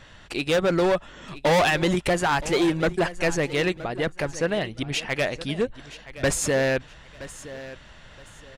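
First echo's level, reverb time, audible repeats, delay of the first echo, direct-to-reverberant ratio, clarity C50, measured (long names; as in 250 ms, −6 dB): −16.0 dB, no reverb audible, 2, 971 ms, no reverb audible, no reverb audible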